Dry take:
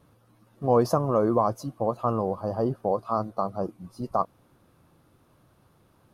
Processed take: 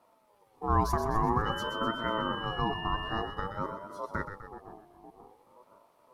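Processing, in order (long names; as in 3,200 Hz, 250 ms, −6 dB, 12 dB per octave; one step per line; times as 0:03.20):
flat-topped bell 1,000 Hz −8.5 dB 1.1 octaves
0:01.45–0:03.20: steady tone 2,300 Hz −32 dBFS
on a send: echo with a time of its own for lows and highs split 390 Hz, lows 522 ms, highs 126 ms, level −8 dB
on the sum: ring modulator whose carrier an LFO sweeps 660 Hz, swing 20%, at 0.51 Hz
level −2 dB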